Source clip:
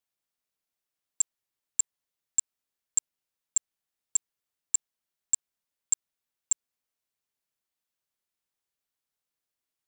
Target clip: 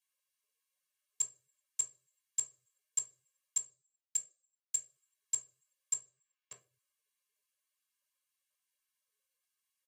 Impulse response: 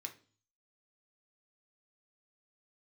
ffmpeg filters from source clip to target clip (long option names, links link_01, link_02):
-filter_complex "[0:a]acrossover=split=280|1100[link_01][link_02][link_03];[link_03]alimiter=limit=-22dB:level=0:latency=1[link_04];[link_01][link_02][link_04]amix=inputs=3:normalize=0,asplit=3[link_05][link_06][link_07];[link_05]afade=type=out:start_time=3.57:duration=0.02[link_08];[link_06]aeval=exprs='0.0841*(cos(1*acos(clip(val(0)/0.0841,-1,1)))-cos(1*PI/2))+0.00075*(cos(2*acos(clip(val(0)/0.0841,-1,1)))-cos(2*PI/2))+0.00119*(cos(4*acos(clip(val(0)/0.0841,-1,1)))-cos(4*PI/2))+0.0133*(cos(7*acos(clip(val(0)/0.0841,-1,1)))-cos(7*PI/2))':channel_layout=same,afade=type=in:start_time=3.57:duration=0.02,afade=type=out:start_time=4.75:duration=0.02[link_09];[link_07]afade=type=in:start_time=4.75:duration=0.02[link_10];[link_08][link_09][link_10]amix=inputs=3:normalize=0,asplit=3[link_11][link_12][link_13];[link_11]afade=type=out:start_time=5.93:duration=0.02[link_14];[link_12]lowpass=3200,afade=type=in:start_time=5.93:duration=0.02,afade=type=out:start_time=6.52:duration=0.02[link_15];[link_13]afade=type=in:start_time=6.52:duration=0.02[link_16];[link_14][link_15][link_16]amix=inputs=3:normalize=0,aecho=1:1:1.8:0.98[link_17];[1:a]atrim=start_sample=2205,asetrate=52920,aresample=44100[link_18];[link_17][link_18]afir=irnorm=-1:irlink=0,volume=3.5dB" -ar 44100 -c:a libvorbis -b:a 48k